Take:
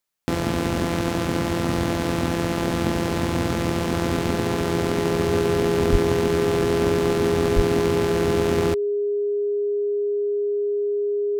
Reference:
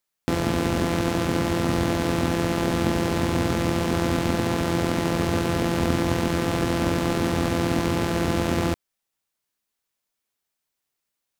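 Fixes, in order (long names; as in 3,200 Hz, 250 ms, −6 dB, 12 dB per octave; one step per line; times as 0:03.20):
notch filter 410 Hz, Q 30
0:05.91–0:06.03: high-pass filter 140 Hz 24 dB per octave
0:07.55–0:07.67: high-pass filter 140 Hz 24 dB per octave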